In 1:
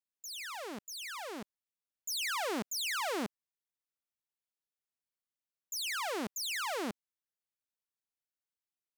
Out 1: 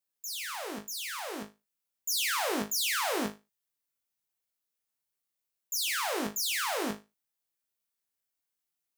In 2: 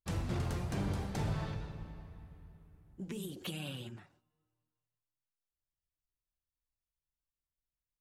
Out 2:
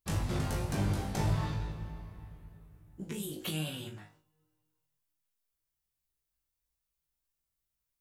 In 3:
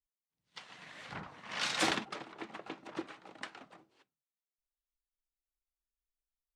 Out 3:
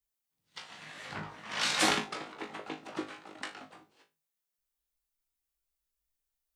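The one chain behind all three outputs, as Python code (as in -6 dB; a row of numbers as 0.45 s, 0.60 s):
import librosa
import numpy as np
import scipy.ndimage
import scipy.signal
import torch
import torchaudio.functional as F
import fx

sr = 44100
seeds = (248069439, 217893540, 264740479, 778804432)

p1 = fx.high_shelf(x, sr, hz=8600.0, db=7.5)
p2 = p1 + fx.room_flutter(p1, sr, wall_m=3.3, rt60_s=0.24, dry=0)
y = F.gain(torch.from_numpy(p2), 2.0).numpy()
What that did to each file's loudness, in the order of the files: +5.5 LU, +4.5 LU, +4.5 LU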